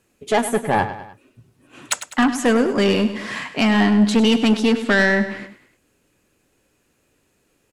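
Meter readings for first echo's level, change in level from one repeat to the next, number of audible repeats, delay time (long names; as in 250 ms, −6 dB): −12.0 dB, −6.0 dB, 3, 101 ms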